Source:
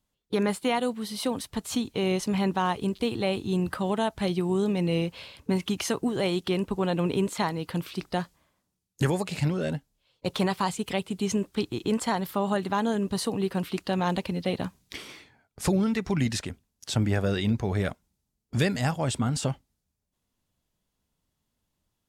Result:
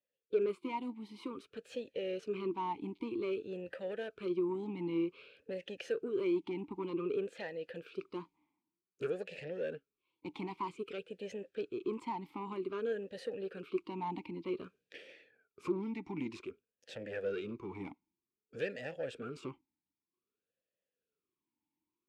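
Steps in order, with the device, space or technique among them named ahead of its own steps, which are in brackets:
talk box (tube saturation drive 23 dB, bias 0.5; formant filter swept between two vowels e-u 0.53 Hz)
level +4 dB

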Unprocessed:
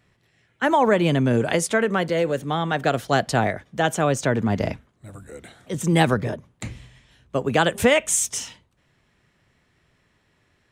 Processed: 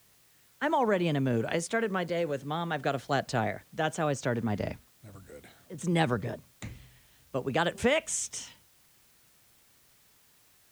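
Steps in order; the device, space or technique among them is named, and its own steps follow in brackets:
worn cassette (low-pass filter 8,300 Hz; tape wow and flutter; tape dropouts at 0:05.67, 110 ms −6 dB; white noise bed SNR 31 dB)
level −8.5 dB

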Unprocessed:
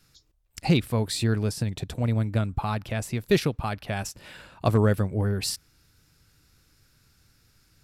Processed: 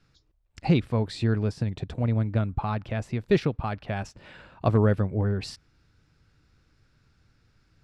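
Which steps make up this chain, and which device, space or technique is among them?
through cloth (low-pass filter 6,400 Hz 12 dB per octave; high-shelf EQ 3,600 Hz −12 dB)

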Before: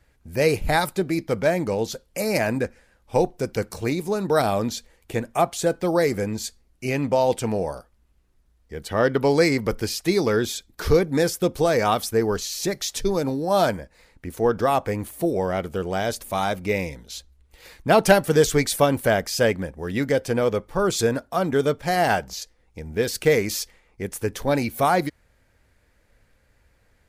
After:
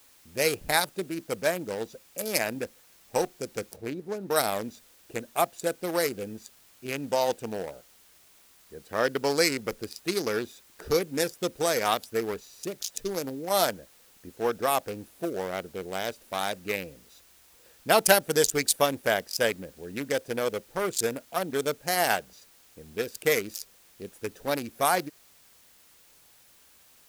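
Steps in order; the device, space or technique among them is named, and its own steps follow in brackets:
adaptive Wiener filter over 41 samples
turntable without a phono preamp (RIAA equalisation recording; white noise bed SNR 28 dB)
0:03.76–0:04.31: high-shelf EQ 2,800 Hz −10.5 dB
level −3 dB

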